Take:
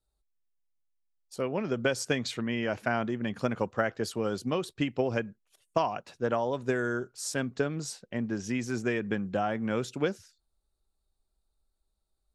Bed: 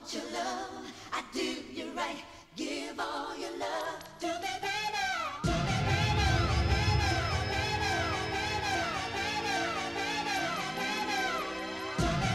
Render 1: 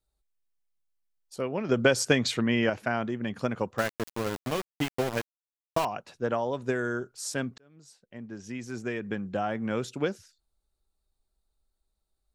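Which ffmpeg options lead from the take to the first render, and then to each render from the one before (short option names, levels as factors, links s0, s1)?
-filter_complex "[0:a]asettb=1/sr,asplit=3[s0][s1][s2];[s0]atrim=end=1.694[s3];[s1]atrim=start=1.69:end=2.7,asetpts=PTS-STARTPTS,afade=t=in:d=0.004:c=qsin,afade=t=out:st=1.006:d=0.004:c=qsin,acontrast=50[s4];[s2]atrim=start=2.696[s5];[s3][s4]acrossfade=d=0.004:c1=hsin:c2=qsin[s6];[s6][s5]acrossfade=d=0.004:c1=qsin:c2=hsin,asettb=1/sr,asplit=3[s7][s8][s9];[s7]atrim=end=3.784[s10];[s8]atrim=start=3.78:end=5.85,asetpts=PTS-STARTPTS,afade=t=in:d=0.004:c=qsin,afade=t=out:st=2.066:d=0.004:c=qsin,aeval=exprs='val(0)*gte(abs(val(0)),0.0376)':c=same[s11];[s9]atrim=start=5.846[s12];[s10][s11]acrossfade=d=0.004:c1=hsin:c2=qsin[s13];[s13][s12]acrossfade=d=0.004:c1=qsin:c2=hsin,asplit=2[s14][s15];[s14]atrim=end=7.58,asetpts=PTS-STARTPTS,afade=t=out:st=7.576:d=0.004:c=hsin[s16];[s15]atrim=start=7.58,asetpts=PTS-STARTPTS,afade=t=in:d=1.97[s17];[s16][s17]concat=n=2:v=0:a=1"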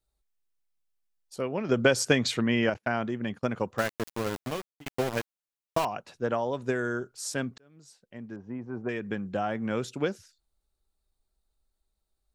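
-filter_complex "[0:a]asettb=1/sr,asplit=3[s0][s1][s2];[s0]atrim=end=2.744[s3];[s1]atrim=start=2.74:end=3.6,asetpts=PTS-STARTPTS,afade=t=in:d=0.004:c=qsin,afade=t=out:st=0.856:d=0.004:c=qsin,agate=range=0.0316:threshold=0.00708:ratio=16:release=100:detection=peak[s4];[s2]atrim=start=3.596[s5];[s3][s4]acrossfade=d=0.004:c1=hsin:c2=qsin[s6];[s6][s5]acrossfade=d=0.004:c1=qsin:c2=hsin,asettb=1/sr,asplit=3[s7][s8][s9];[s7]atrim=end=8.364[s10];[s8]atrim=start=8.36:end=8.89,asetpts=PTS-STARTPTS,afade=t=in:d=0.004:c=qsin,afade=t=out:st=0.526:d=0.004:c=qsin,lowpass=f=950:t=q:w=2.3[s11];[s9]atrim=start=8.886[s12];[s10][s11]acrossfade=d=0.004:c1=hsin:c2=qsin[s13];[s13][s12]acrossfade=d=0.004:c1=qsin:c2=hsin,asplit=2[s14][s15];[s14]atrim=end=4.86,asetpts=PTS-STARTPTS,afade=t=out:st=4.39:d=0.47[s16];[s15]atrim=start=4.86,asetpts=PTS-STARTPTS,afade=t=in:d=0.004:c=hsin[s17];[s16][s17]concat=n=2:v=0:a=1"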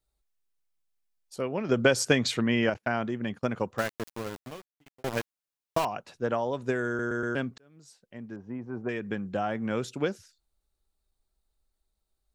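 -filter_complex "[0:a]asplit=6[s0][s1][s2][s3][s4][s5];[s0]atrim=end=5.04,asetpts=PTS-STARTPTS,afade=t=out:st=3.62:d=1.42[s6];[s1]atrim=start=5.04:end=6.992,asetpts=PTS-STARTPTS,afade=t=in:d=0.004:c=hsin[s7];[s2]atrim=start=6.868:end=6.992[s8];[s3]atrim=start=6.868:end=6.992[s9];[s4]atrim=start=6.868:end=6.992[s10];[s5]atrim=start=7.348[s11];[s6][s7]concat=n=2:v=0:a=1[s12];[s12][s8]acrossfade=d=0.004:c1=hsin:c2=hsin[s13];[s13][s9]acrossfade=d=0.004:c1=hsin:c2=hsin[s14];[s14][s10]acrossfade=d=0.004:c1=hsin:c2=hsin[s15];[s15][s11]acrossfade=d=0.004:c1=hsin:c2=hsin"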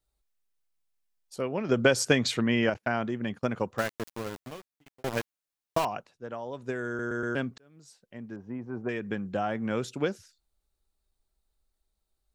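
-filter_complex "[0:a]asplit=2[s0][s1];[s0]atrim=end=6.07,asetpts=PTS-STARTPTS,afade=t=out:st=6.066:d=0.004:c=hsin:silence=0.16788[s2];[s1]atrim=start=6.07,asetpts=PTS-STARTPTS,afade=t=in:d=1.31:silence=0.16788[s3];[s2][s3]concat=n=2:v=0:a=1"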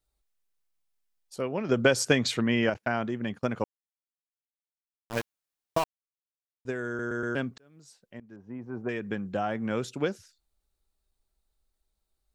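-filter_complex "[0:a]asplit=6[s0][s1][s2][s3][s4][s5];[s0]atrim=end=3.64,asetpts=PTS-STARTPTS,afade=t=out:st=3.636:d=0.004:c=hsin[s6];[s1]atrim=start=3.64:end=5.1,asetpts=PTS-STARTPTS,volume=0[s7];[s2]atrim=start=5.1:end=5.84,asetpts=PTS-STARTPTS,afade=t=in:d=0.004:c=hsin,afade=t=out:st=0.736:d=0.004:c=hsin[s8];[s3]atrim=start=5.84:end=6.65,asetpts=PTS-STARTPTS,volume=0[s9];[s4]atrim=start=6.65:end=8.2,asetpts=PTS-STARTPTS,afade=t=in:d=0.004:c=hsin,afade=t=out:st=1.546:d=0.004:c=hsin:silence=0.16788[s10];[s5]atrim=start=8.2,asetpts=PTS-STARTPTS,afade=t=in:d=0.73:c=qsin:silence=0.16788[s11];[s6][s7][s8][s9][s10][s11]concat=n=6:v=0:a=1"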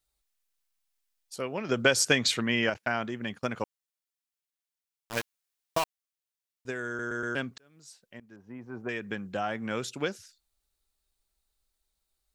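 -af "tiltshelf=f=1100:g=-4.5"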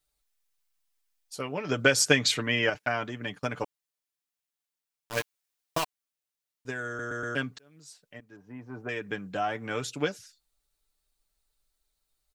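-af "aecho=1:1:6.8:0.56"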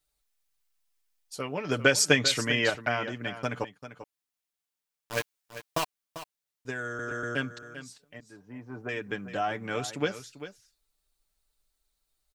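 -af "aecho=1:1:394:0.237"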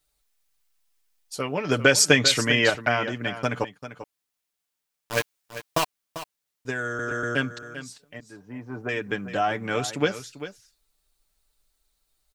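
-af "volume=1.88,alimiter=limit=0.708:level=0:latency=1"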